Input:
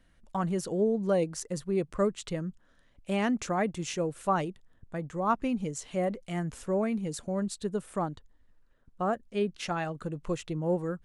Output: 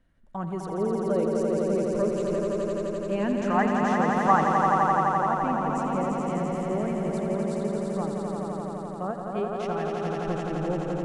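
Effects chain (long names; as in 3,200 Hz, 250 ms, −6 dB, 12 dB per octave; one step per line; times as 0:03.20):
0:01.84–0:03.36: EQ curve with evenly spaced ripples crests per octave 1.4, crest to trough 8 dB
0:03.44–0:04.74: gain on a spectral selection 730–2,100 Hz +11 dB
high-shelf EQ 2,100 Hz −10 dB
echo that builds up and dies away 85 ms, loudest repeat 5, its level −4.5 dB
every ending faded ahead of time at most 190 dB per second
level −1.5 dB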